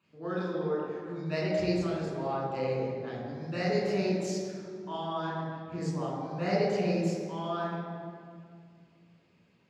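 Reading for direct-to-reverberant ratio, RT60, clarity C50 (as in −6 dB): −5.5 dB, 2.2 s, −0.5 dB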